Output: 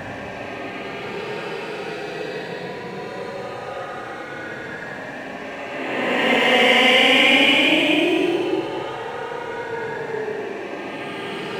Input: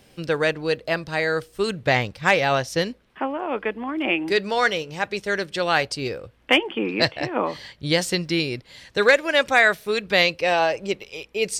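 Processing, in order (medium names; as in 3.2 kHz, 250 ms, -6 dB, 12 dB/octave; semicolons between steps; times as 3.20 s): local Wiener filter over 9 samples; echo with a slow build-up 199 ms, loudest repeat 8, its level -18 dB; Paulstretch 26×, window 0.05 s, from 6.27 s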